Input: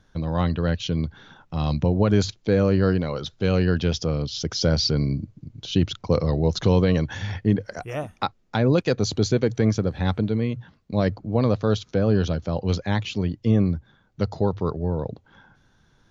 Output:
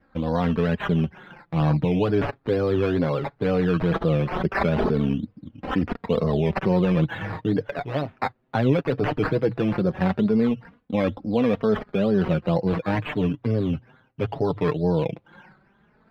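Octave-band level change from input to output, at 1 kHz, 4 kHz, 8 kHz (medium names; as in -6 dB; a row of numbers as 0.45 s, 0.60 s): +3.0 dB, -9.0 dB, no reading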